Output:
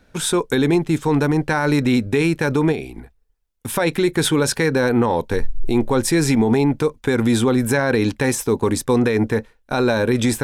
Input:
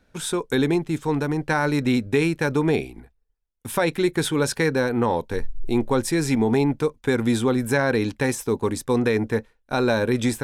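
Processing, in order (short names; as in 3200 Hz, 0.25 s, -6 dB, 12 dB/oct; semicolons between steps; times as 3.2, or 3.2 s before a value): limiter -16 dBFS, peak gain reduction 6.5 dB; 2.72–3.76 compressor 3:1, threshold -31 dBFS, peak gain reduction 7.5 dB; gain +7 dB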